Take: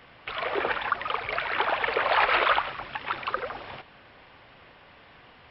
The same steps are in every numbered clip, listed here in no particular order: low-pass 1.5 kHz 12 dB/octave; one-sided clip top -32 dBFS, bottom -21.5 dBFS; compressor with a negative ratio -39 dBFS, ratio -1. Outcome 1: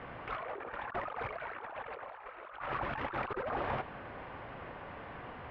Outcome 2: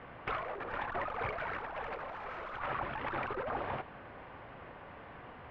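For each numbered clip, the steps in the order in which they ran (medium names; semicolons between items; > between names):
compressor with a negative ratio > one-sided clip > low-pass; one-sided clip > low-pass > compressor with a negative ratio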